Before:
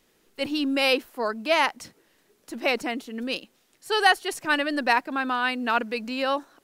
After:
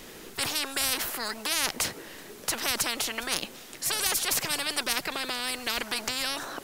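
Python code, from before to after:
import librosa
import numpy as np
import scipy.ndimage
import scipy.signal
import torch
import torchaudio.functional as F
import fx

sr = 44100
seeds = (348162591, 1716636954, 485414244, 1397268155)

y = fx.spectral_comp(x, sr, ratio=10.0)
y = y * librosa.db_to_amplitude(-1.5)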